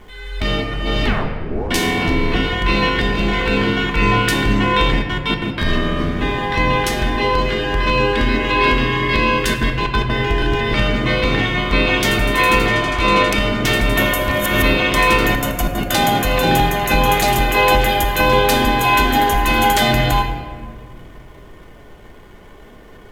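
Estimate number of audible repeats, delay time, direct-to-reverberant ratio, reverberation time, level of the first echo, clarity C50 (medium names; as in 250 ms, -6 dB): no echo, no echo, 2.0 dB, 1.9 s, no echo, 6.5 dB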